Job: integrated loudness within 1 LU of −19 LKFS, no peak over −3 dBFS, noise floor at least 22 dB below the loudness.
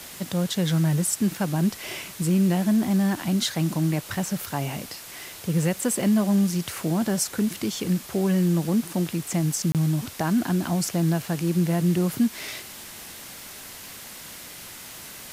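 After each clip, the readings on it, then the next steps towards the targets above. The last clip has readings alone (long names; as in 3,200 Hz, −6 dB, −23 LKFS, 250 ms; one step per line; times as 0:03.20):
number of dropouts 1; longest dropout 28 ms; background noise floor −41 dBFS; target noise floor −47 dBFS; integrated loudness −24.5 LKFS; sample peak −11.0 dBFS; target loudness −19.0 LKFS
→ repair the gap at 0:09.72, 28 ms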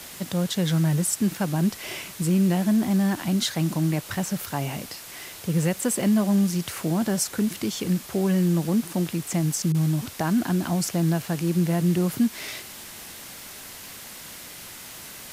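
number of dropouts 0; background noise floor −41 dBFS; target noise floor −47 dBFS
→ broadband denoise 6 dB, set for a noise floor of −41 dBFS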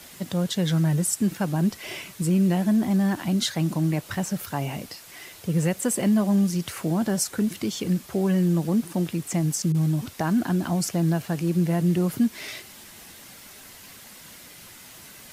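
background noise floor −46 dBFS; target noise floor −47 dBFS
→ broadband denoise 6 dB, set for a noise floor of −46 dBFS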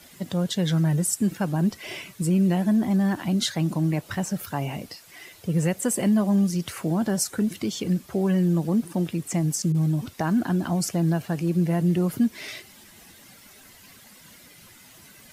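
background noise floor −51 dBFS; integrated loudness −24.5 LKFS; sample peak −12.0 dBFS; target loudness −19.0 LKFS
→ level +5.5 dB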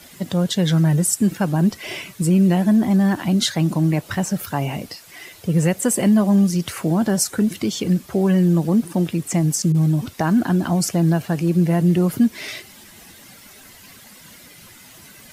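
integrated loudness −19.0 LKFS; sample peak −6.5 dBFS; background noise floor −45 dBFS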